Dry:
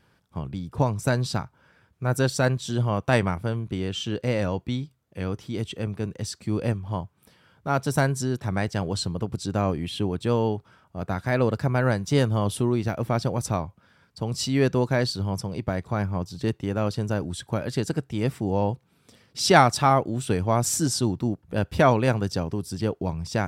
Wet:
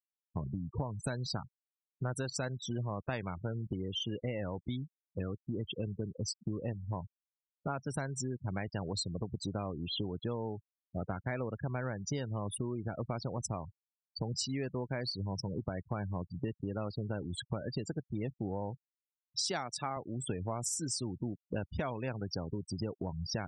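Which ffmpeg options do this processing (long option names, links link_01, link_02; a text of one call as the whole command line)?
ffmpeg -i in.wav -filter_complex "[0:a]asettb=1/sr,asplit=3[link_01][link_02][link_03];[link_01]atrim=end=19.424[link_04];[link_02]atrim=start=19.42:end=19.97,asetpts=PTS-STARTPTS,afade=type=in:duration=0.004:curve=qsin,afade=type=out:start_time=0.546:duration=0.004:curve=qsin,highpass=140[link_05];[link_03]atrim=start=19.966[link_06];[link_04][link_05]acrossfade=duration=0.004:curve1=hsin:curve2=qsin[link_07];[link_07][link_06]acrossfade=duration=0.004:curve1=qsin:curve2=hsin,afftfilt=real='re*gte(hypot(re,im),0.0398)':imag='im*gte(hypot(re,im),0.0398)':win_size=1024:overlap=0.75,highshelf=frequency=3300:gain=8.5,acompressor=threshold=-33dB:ratio=12" out.wav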